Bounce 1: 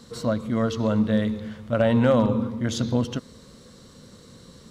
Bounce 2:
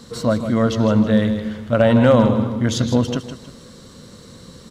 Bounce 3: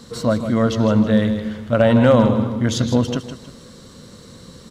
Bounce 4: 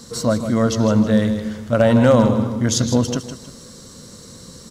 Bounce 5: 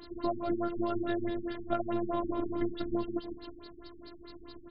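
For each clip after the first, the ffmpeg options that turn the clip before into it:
-af "aecho=1:1:158|316|474|632:0.316|0.104|0.0344|0.0114,volume=6dB"
-af anull
-af "highshelf=f=4.4k:t=q:w=1.5:g=6.5"
-af "afftfilt=real='hypot(re,im)*cos(PI*b)':imag='0':win_size=512:overlap=0.75,acompressor=threshold=-26dB:ratio=10,afftfilt=real='re*lt(b*sr/1024,320*pow(5300/320,0.5+0.5*sin(2*PI*4.7*pts/sr)))':imag='im*lt(b*sr/1024,320*pow(5300/320,0.5+0.5*sin(2*PI*4.7*pts/sr)))':win_size=1024:overlap=0.75"

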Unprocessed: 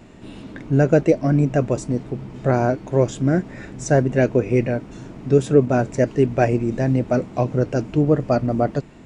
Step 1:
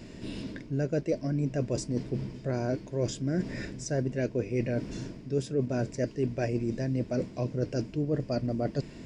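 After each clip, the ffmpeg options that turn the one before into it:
-af "equalizer=f=800:t=o:w=0.33:g=-11,equalizer=f=1.25k:t=o:w=0.33:g=-10,equalizer=f=5k:t=o:w=0.33:g=11,areverse,acompressor=threshold=-28dB:ratio=4,areverse"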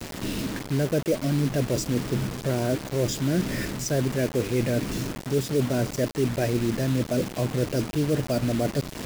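-filter_complex "[0:a]asplit=2[a][b];[b]alimiter=level_in=3.5dB:limit=-24dB:level=0:latency=1:release=66,volume=-3.5dB,volume=0.5dB[c];[a][c]amix=inputs=2:normalize=0,acrusher=bits=5:mix=0:aa=0.000001,volume=1.5dB"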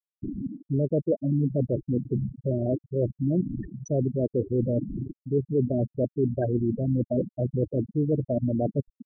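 -af "adynamicsmooth=sensitivity=6.5:basefreq=1k,afftfilt=real='re*gte(hypot(re,im),0.178)':imag='im*gte(hypot(re,im),0.178)':win_size=1024:overlap=0.75"

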